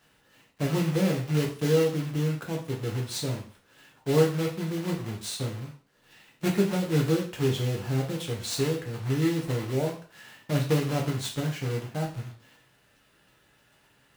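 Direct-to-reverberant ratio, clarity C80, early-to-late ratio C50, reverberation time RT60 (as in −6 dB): −1.0 dB, 13.0 dB, 8.0 dB, 0.45 s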